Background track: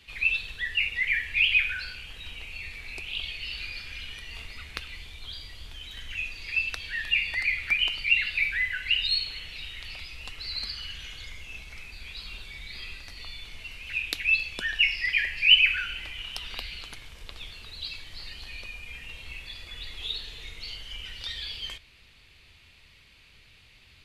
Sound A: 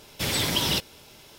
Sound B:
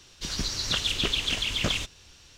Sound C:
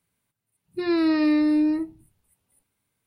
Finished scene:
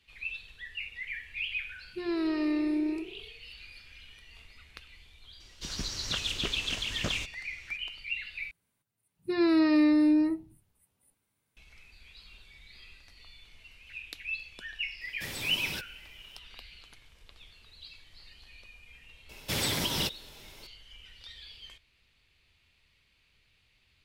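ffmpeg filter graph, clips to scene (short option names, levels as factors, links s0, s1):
-filter_complex "[3:a]asplit=2[s0][s1];[1:a]asplit=2[s2][s3];[0:a]volume=0.237[s4];[s0]asplit=6[s5][s6][s7][s8][s9][s10];[s6]adelay=91,afreqshift=32,volume=0.168[s11];[s7]adelay=182,afreqshift=64,volume=0.0944[s12];[s8]adelay=273,afreqshift=96,volume=0.0525[s13];[s9]adelay=364,afreqshift=128,volume=0.0295[s14];[s10]adelay=455,afreqshift=160,volume=0.0166[s15];[s5][s11][s12][s13][s14][s15]amix=inputs=6:normalize=0[s16];[s2]highshelf=f=10000:g=3.5[s17];[s3]alimiter=limit=0.15:level=0:latency=1:release=252[s18];[s4]asplit=2[s19][s20];[s19]atrim=end=8.514[s21];[s1]atrim=end=3.06,asetpts=PTS-STARTPTS,volume=0.75[s22];[s20]atrim=start=11.566[s23];[s16]atrim=end=3.06,asetpts=PTS-STARTPTS,volume=0.355,afade=t=in:d=0.004:c=hsin,afade=t=out:st=3.056:d=0.004:c=hsin,adelay=1190[s24];[2:a]atrim=end=2.37,asetpts=PTS-STARTPTS,volume=0.531,afade=t=in:d=0.004:c=hsin,afade=t=out:st=2.366:d=0.004:c=hsin,adelay=5400[s25];[s17]atrim=end=1.38,asetpts=PTS-STARTPTS,volume=0.2,afade=t=in:d=0.004:c=hsin,afade=t=out:st=1.376:d=0.004:c=hsin,adelay=15010[s26];[s18]atrim=end=1.38,asetpts=PTS-STARTPTS,volume=0.708,afade=t=in:d=0.004:c=hsin,afade=t=out:st=1.376:d=0.004:c=hsin,adelay=19290[s27];[s21][s22]acrossfade=d=0.004:c1=hsin:c2=hsin[s28];[s28][s23]acrossfade=d=0.004:c1=hsin:c2=hsin[s29];[s29][s24][s25][s26][s27]amix=inputs=5:normalize=0"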